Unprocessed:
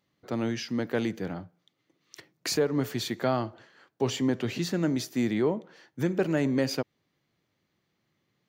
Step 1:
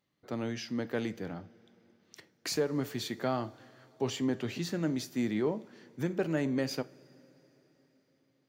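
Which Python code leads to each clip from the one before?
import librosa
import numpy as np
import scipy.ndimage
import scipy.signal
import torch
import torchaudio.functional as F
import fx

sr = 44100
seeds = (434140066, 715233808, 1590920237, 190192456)

y = fx.rev_double_slope(x, sr, seeds[0], early_s=0.27, late_s=4.4, knee_db=-21, drr_db=13.0)
y = y * 10.0 ** (-5.0 / 20.0)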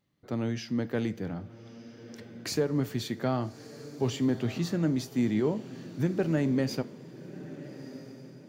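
y = fx.low_shelf(x, sr, hz=220.0, db=10.0)
y = fx.echo_diffused(y, sr, ms=1277, feedback_pct=40, wet_db=-15)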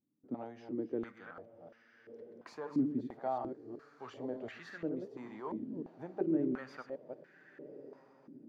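y = fx.reverse_delay(x, sr, ms=188, wet_db=-6.5)
y = fx.vibrato(y, sr, rate_hz=0.41, depth_cents=18.0)
y = fx.filter_held_bandpass(y, sr, hz=2.9, low_hz=270.0, high_hz=1700.0)
y = y * 10.0 ** (1.0 / 20.0)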